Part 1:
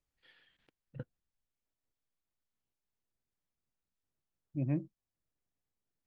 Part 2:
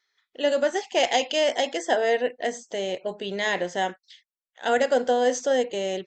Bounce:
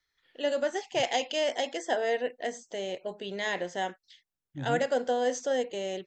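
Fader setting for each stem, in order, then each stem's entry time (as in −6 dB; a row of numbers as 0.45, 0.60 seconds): −3.0, −6.0 decibels; 0.00, 0.00 seconds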